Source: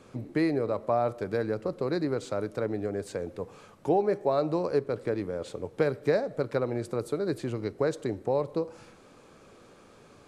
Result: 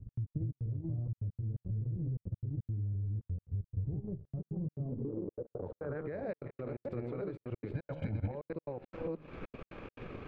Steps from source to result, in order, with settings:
delay that plays each chunk backwards 328 ms, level −0.5 dB
low-pass filter sweep 100 Hz → 2,500 Hz, 0:04.49–0:06.22
hum removal 77.55 Hz, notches 18
downward compressor 4 to 1, threshold −35 dBFS, peak gain reduction 14 dB
spectral tilt −3 dB per octave
echo through a band-pass that steps 383 ms, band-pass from 2,800 Hz, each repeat 0.7 octaves, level −10.5 dB
brickwall limiter −31.5 dBFS, peak gain reduction 13.5 dB
0:07.75–0:08.32: comb filter 1.3 ms, depth 88%
transient designer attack +6 dB, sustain −8 dB
gate pattern "x.x.xx.xxxxx" 173 BPM −60 dB
one half of a high-frequency compander encoder only

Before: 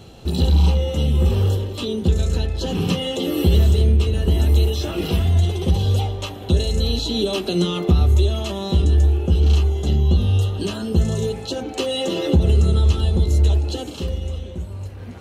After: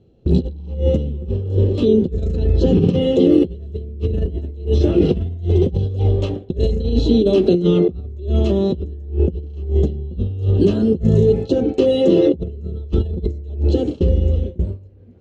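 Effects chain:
high-frequency loss of the air 110 metres
noise gate with hold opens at −20 dBFS
compressor whose output falls as the input rises −22 dBFS, ratio −0.5
low shelf with overshoot 650 Hz +12 dB, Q 1.5
level −7 dB

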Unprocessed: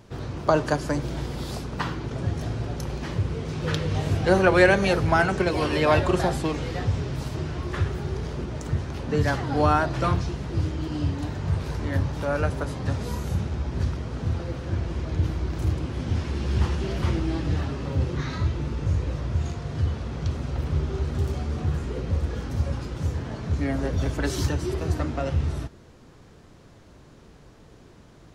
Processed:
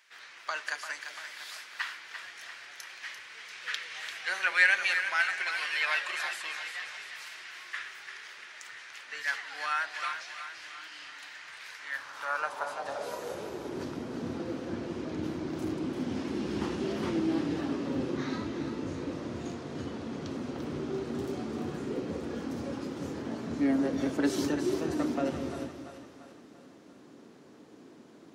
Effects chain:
echo with a time of its own for lows and highs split 610 Hz, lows 189 ms, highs 343 ms, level −8.5 dB
high-pass filter sweep 1,900 Hz → 260 Hz, 0:11.77–0:13.99
level −5 dB

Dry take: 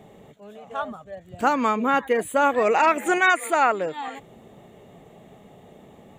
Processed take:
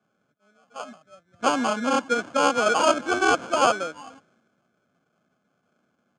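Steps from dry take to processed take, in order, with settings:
sample-rate reduction 1,900 Hz, jitter 0%
loudspeaker in its box 230–7,200 Hz, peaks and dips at 250 Hz +3 dB, 420 Hz −8 dB, 920 Hz −6 dB, 1,500 Hz +7 dB, 2,700 Hz −7 dB, 4,600 Hz −8 dB
multiband upward and downward expander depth 70%

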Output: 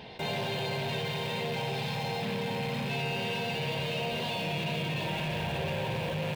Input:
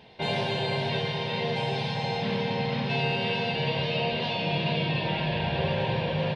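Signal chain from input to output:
loose part that buzzes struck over −30 dBFS, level −25 dBFS
in parallel at −10.5 dB: log-companded quantiser 2 bits
on the sum: envelope flattener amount 50%
level −8.5 dB

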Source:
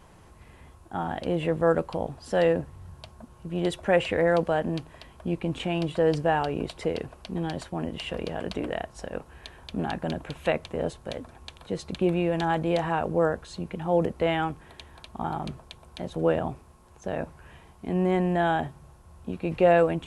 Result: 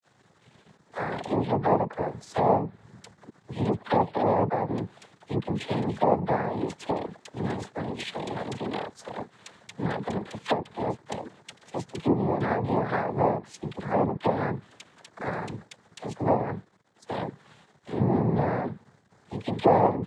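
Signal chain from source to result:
all-pass dispersion lows, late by 48 ms, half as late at 630 Hz
dead-zone distortion −54 dBFS
treble cut that deepens with the level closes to 660 Hz, closed at −20.5 dBFS
cochlear-implant simulation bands 6
level +1 dB

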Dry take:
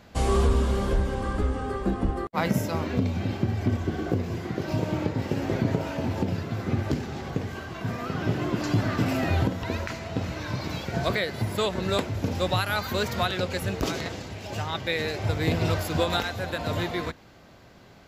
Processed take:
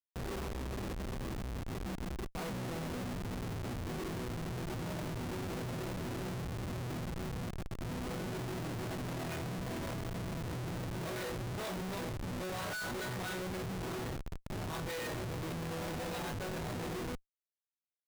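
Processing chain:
resonators tuned to a chord B2 sus4, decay 0.44 s
comparator with hysteresis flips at −46 dBFS
level +5.5 dB

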